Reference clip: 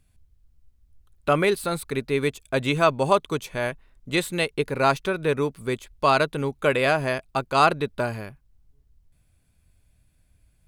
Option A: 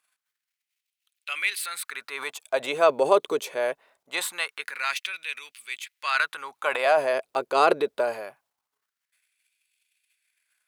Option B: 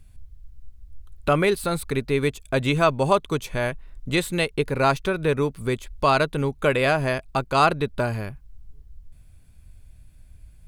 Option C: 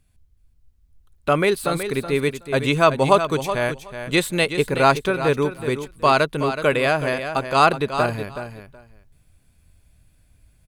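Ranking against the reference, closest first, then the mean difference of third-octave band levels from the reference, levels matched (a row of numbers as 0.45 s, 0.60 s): B, C, A; 1.0 dB, 4.0 dB, 8.5 dB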